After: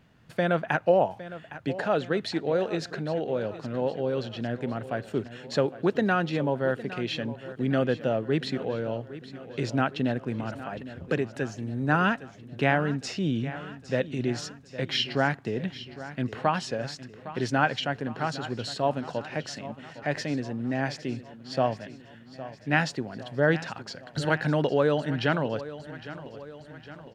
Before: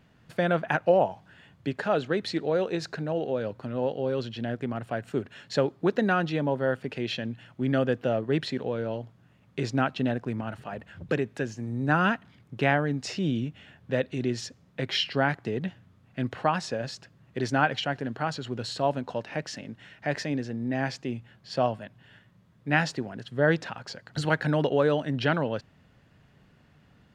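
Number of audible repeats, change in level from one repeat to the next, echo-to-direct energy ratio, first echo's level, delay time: 4, -5.0 dB, -13.5 dB, -15.0 dB, 810 ms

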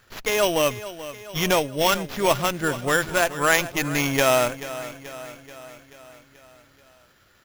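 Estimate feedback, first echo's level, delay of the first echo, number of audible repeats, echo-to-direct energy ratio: 58%, -14.5 dB, 433 ms, 5, -12.5 dB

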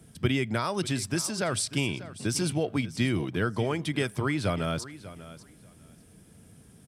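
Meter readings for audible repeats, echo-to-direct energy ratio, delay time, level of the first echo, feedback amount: 2, -16.0 dB, 592 ms, -16.0 dB, 17%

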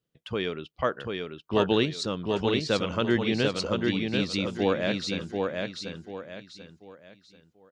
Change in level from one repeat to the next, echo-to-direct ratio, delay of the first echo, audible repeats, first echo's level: -9.5 dB, -3.0 dB, 739 ms, 4, -3.5 dB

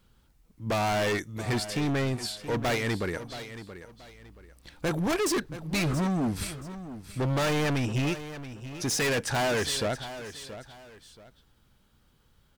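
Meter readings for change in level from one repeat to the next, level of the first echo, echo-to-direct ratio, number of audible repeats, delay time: -10.5 dB, -13.0 dB, -12.5 dB, 2, 677 ms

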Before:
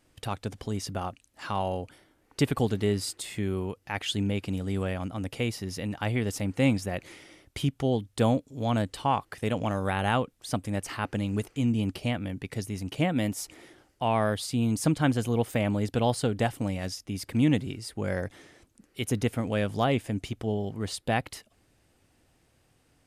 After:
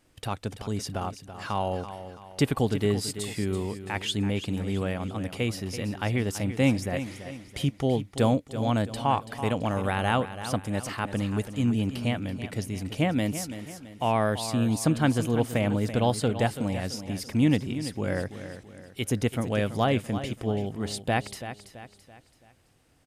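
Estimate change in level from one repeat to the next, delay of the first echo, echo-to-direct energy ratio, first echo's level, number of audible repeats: -7.5 dB, 333 ms, -10.5 dB, -11.5 dB, 4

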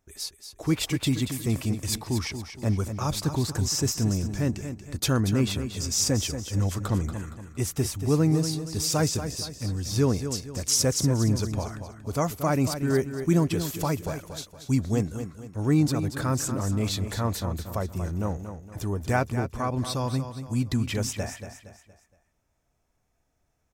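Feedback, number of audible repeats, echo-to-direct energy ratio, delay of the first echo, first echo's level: 40%, 4, -8.5 dB, 233 ms, -9.5 dB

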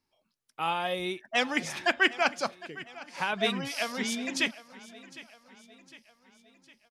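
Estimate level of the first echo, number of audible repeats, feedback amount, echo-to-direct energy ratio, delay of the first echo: -18.5 dB, 3, 51%, -17.0 dB, 757 ms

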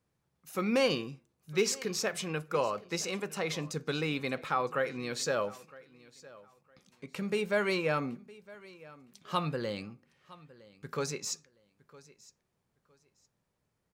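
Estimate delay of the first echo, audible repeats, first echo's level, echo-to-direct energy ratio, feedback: 961 ms, 2, -21.0 dB, -21.0 dB, 23%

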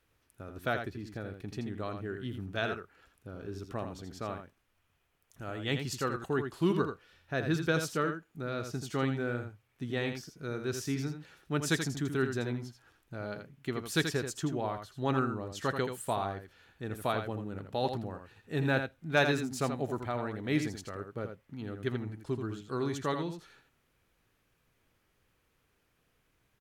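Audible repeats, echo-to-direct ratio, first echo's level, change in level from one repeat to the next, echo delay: 1, -7.5 dB, -7.5 dB, no regular repeats, 82 ms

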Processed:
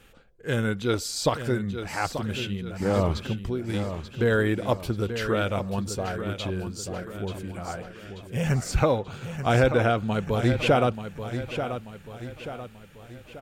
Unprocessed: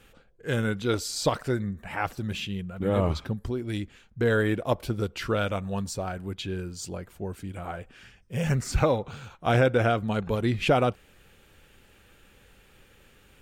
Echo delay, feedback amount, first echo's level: 885 ms, 46%, -9.5 dB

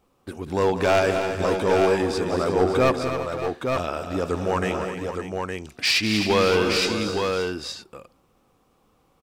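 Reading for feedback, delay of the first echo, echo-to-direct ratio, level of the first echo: no regular repeats, 193 ms, -2.0 dB, -11.0 dB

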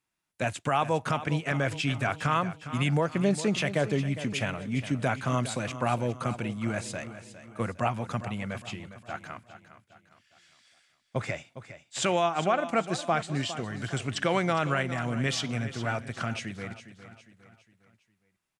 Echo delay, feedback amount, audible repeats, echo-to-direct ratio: 408 ms, 44%, 4, -12.0 dB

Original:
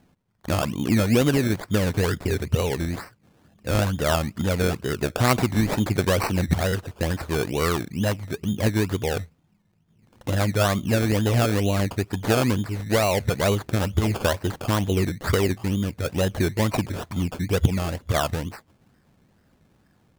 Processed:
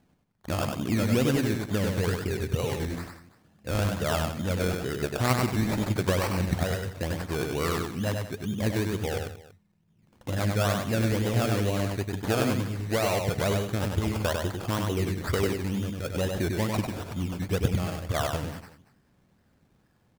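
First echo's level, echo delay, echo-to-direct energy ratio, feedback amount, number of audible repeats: -4.0 dB, 98 ms, -3.5 dB, no regular repeats, 3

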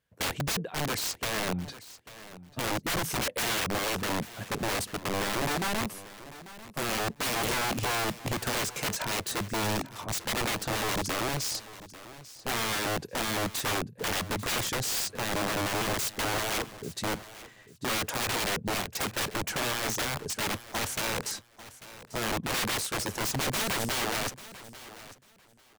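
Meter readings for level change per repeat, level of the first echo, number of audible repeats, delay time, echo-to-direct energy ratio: -14.0 dB, -16.5 dB, 2, 843 ms, -16.5 dB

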